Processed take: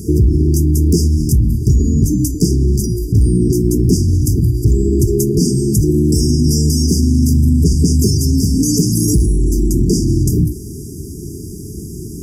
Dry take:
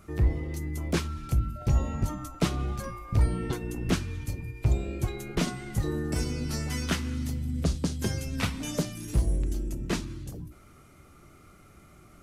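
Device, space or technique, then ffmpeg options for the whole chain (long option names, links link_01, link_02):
loud club master: -af "acompressor=threshold=-29dB:ratio=1.5,asoftclip=type=hard:threshold=-22dB,alimiter=level_in=31.5dB:limit=-1dB:release=50:level=0:latency=1,afftfilt=real='re*(1-between(b*sr/4096,450,4700))':imag='im*(1-between(b*sr/4096,450,4700))':win_size=4096:overlap=0.75,highpass=53,volume=-3.5dB"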